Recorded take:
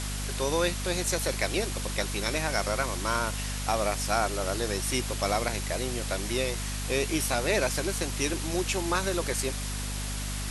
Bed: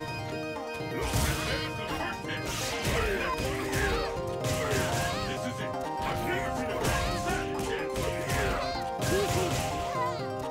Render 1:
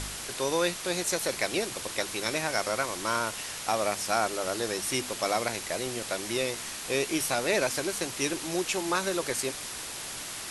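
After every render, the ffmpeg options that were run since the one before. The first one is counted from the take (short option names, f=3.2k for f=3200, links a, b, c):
-af "bandreject=f=50:t=h:w=4,bandreject=f=100:t=h:w=4,bandreject=f=150:t=h:w=4,bandreject=f=200:t=h:w=4,bandreject=f=250:t=h:w=4"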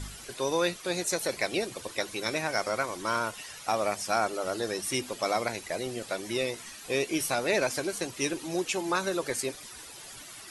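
-af "afftdn=nr=12:nf=-38"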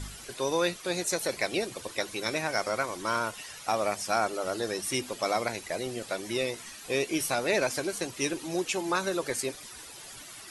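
-af anull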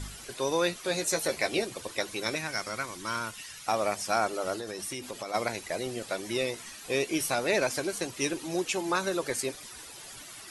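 -filter_complex "[0:a]asettb=1/sr,asplit=3[a][b][c];[a]atrim=end=0.754[d];[b]atrim=start=0.75:end=1.62,asetpts=PTS-STARTPTS,afade=t=in:d=0.004:c=qsin,afade=t=out:st=0.866:d=0.004:c=qsin,asplit=2[e][f];[f]adelay=13,volume=-6dB[g];[e][g]amix=inputs=2:normalize=0,atrim=end_sample=38367[h];[c]atrim=start=1.616[i];[d][h]acrossfade=d=0.004:c1=hsin:c2=qsin[j];[j][i]acrossfade=d=0.004:c1=qsin:c2=hsin,asettb=1/sr,asplit=3[k][l][m];[k]atrim=end=2.354[n];[l]atrim=start=2.35:end=3.68,asetpts=PTS-STARTPTS,afade=t=in:d=0.004:c=qsin,afade=t=out:st=1.326:d=0.004:c=qsin,equalizer=f=600:w=0.82:g=-9.5[o];[m]atrim=start=3.676[p];[n][o]acrossfade=d=0.004:c1=hsin:c2=qsin[q];[q][p]acrossfade=d=0.004:c1=qsin:c2=hsin,asplit=3[r][s][t];[r]afade=t=out:st=4.55:d=0.02[u];[s]acompressor=threshold=-32dB:ratio=10:attack=3.2:release=140:knee=1:detection=peak,afade=t=in:st=4.55:d=0.02,afade=t=out:st=5.33:d=0.02[v];[t]afade=t=in:st=5.33:d=0.02[w];[u][v][w]amix=inputs=3:normalize=0"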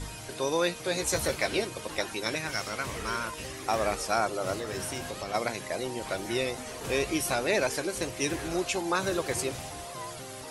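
-filter_complex "[1:a]volume=-10dB[a];[0:a][a]amix=inputs=2:normalize=0"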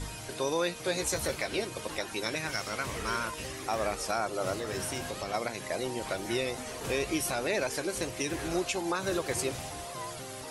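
-af "alimiter=limit=-19dB:level=0:latency=1:release=180"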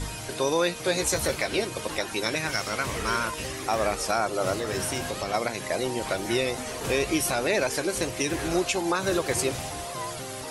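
-af "volume=5.5dB"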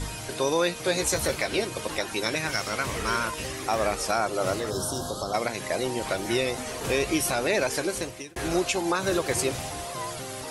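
-filter_complex "[0:a]asplit=3[a][b][c];[a]afade=t=out:st=4.69:d=0.02[d];[b]asuperstop=centerf=2200:order=8:qfactor=1.2,afade=t=in:st=4.69:d=0.02,afade=t=out:st=5.33:d=0.02[e];[c]afade=t=in:st=5.33:d=0.02[f];[d][e][f]amix=inputs=3:normalize=0,asplit=2[g][h];[g]atrim=end=8.36,asetpts=PTS-STARTPTS,afade=t=out:st=7.85:d=0.51[i];[h]atrim=start=8.36,asetpts=PTS-STARTPTS,afade=t=in:d=0.004:c=hsin[j];[i][j]concat=n=2:v=0:a=1"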